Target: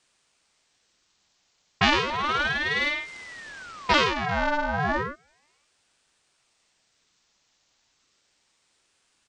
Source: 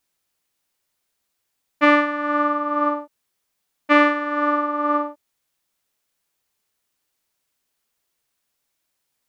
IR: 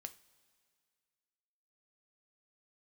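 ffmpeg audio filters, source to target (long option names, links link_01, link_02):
-filter_complex "[0:a]aemphasis=mode=production:type=50fm,crystalizer=i=5.5:c=0,equalizer=frequency=440:width=0.42:gain=12,acrossover=split=160|3000[link_01][link_02][link_03];[link_02]acompressor=threshold=-24dB:ratio=6[link_04];[link_01][link_04][link_03]amix=inputs=3:normalize=0,asettb=1/sr,asplit=3[link_05][link_06][link_07];[link_05]atrim=end=2.104[link_08];[link_06]atrim=start=2.1:end=3.94,asetpts=PTS-STARTPTS,afade=type=in:duration=0.004:curve=qsin,afade=type=out:start_time=1.836:duration=0.004:curve=qsin,aeval=exprs='abs(val(0))':channel_layout=same[link_09];[link_07]atrim=start=3.936[link_10];[link_08][link_09]acrossfade=duration=0.004:curve1=hsin:curve2=qsin[link_11];[link_11][link_10]acrossfade=duration=0.004:curve1=qsin:curve2=hsin,acrossover=split=5000[link_12][link_13];[link_13]acompressor=threshold=-57dB:ratio=4:attack=1:release=60[link_14];[link_12][link_14]amix=inputs=2:normalize=0,asplit=2[link_15][link_16];[1:a]atrim=start_sample=2205[link_17];[link_16][link_17]afir=irnorm=-1:irlink=0,volume=-7dB[link_18];[link_15][link_18]amix=inputs=2:normalize=0,aresample=16000,aresample=44100,aeval=exprs='val(0)*sin(2*PI*1200*n/s+1200*0.75/0.33*sin(2*PI*0.33*n/s))':channel_layout=same"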